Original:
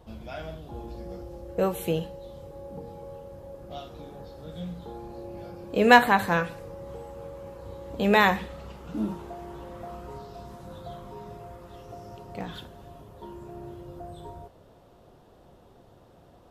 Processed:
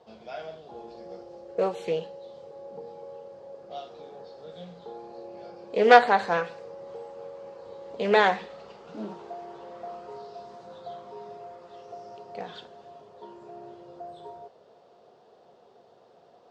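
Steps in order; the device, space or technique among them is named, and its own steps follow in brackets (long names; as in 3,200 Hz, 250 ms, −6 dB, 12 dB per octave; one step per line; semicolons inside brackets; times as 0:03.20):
full-range speaker at full volume (highs frequency-modulated by the lows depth 0.24 ms; loudspeaker in its box 260–6,800 Hz, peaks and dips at 300 Hz −8 dB, 440 Hz +7 dB, 710 Hz +5 dB, 4,600 Hz +5 dB)
level −2.5 dB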